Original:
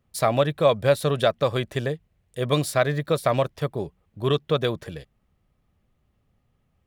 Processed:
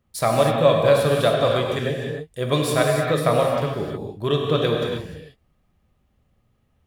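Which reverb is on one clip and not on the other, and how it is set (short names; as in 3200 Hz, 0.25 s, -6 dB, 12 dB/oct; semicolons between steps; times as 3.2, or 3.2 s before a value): non-linear reverb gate 0.33 s flat, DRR -0.5 dB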